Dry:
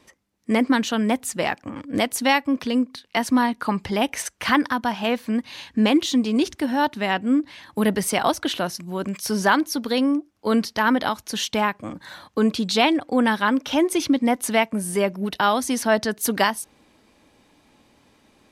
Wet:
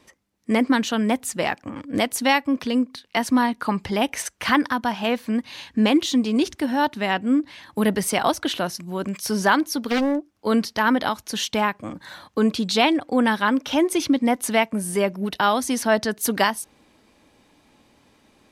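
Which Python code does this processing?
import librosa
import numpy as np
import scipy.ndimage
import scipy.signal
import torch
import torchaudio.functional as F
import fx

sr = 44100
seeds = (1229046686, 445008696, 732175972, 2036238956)

y = fx.doppler_dist(x, sr, depth_ms=0.6, at=(9.88, 10.34))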